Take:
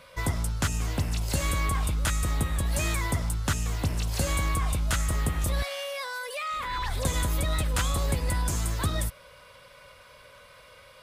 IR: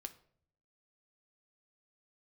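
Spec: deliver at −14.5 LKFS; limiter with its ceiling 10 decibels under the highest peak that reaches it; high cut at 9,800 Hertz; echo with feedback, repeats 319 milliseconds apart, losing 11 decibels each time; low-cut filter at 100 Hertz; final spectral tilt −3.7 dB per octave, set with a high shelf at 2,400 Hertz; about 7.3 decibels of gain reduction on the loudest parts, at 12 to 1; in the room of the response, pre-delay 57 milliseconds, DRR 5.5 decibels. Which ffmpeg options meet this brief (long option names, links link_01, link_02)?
-filter_complex "[0:a]highpass=100,lowpass=9800,highshelf=frequency=2400:gain=8,acompressor=threshold=-29dB:ratio=12,alimiter=limit=-24dB:level=0:latency=1,aecho=1:1:319|638|957:0.282|0.0789|0.0221,asplit=2[link_01][link_02];[1:a]atrim=start_sample=2205,adelay=57[link_03];[link_02][link_03]afir=irnorm=-1:irlink=0,volume=-1dB[link_04];[link_01][link_04]amix=inputs=2:normalize=0,volume=18dB"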